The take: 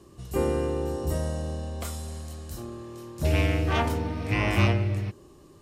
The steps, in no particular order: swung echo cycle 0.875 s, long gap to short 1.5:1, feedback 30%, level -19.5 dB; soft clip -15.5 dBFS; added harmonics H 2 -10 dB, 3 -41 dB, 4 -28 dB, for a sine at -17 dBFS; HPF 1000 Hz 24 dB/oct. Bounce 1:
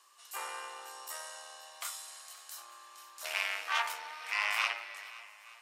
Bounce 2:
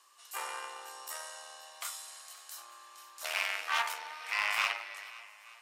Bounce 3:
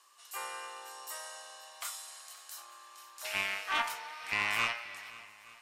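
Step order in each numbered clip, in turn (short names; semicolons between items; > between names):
swung echo > soft clip > added harmonics > HPF; swung echo > added harmonics > HPF > soft clip; HPF > soft clip > added harmonics > swung echo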